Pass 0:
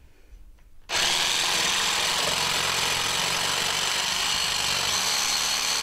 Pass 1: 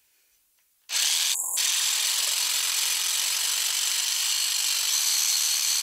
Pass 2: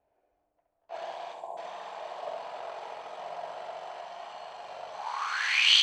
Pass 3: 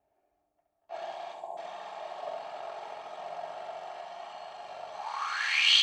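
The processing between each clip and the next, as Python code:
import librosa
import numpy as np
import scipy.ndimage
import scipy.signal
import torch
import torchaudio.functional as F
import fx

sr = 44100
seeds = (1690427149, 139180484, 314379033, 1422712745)

y1 = fx.spec_erase(x, sr, start_s=1.34, length_s=0.23, low_hz=1100.0, high_hz=6700.0)
y1 = np.diff(y1, prepend=0.0)
y1 = y1 * librosa.db_to_amplitude(4.5)
y2 = fx.filter_sweep_lowpass(y1, sr, from_hz=680.0, to_hz=3200.0, start_s=4.93, end_s=5.74, q=7.1)
y2 = fx.echo_feedback(y2, sr, ms=67, feedback_pct=47, wet_db=-6.5)
y3 = fx.notch_comb(y2, sr, f0_hz=500.0)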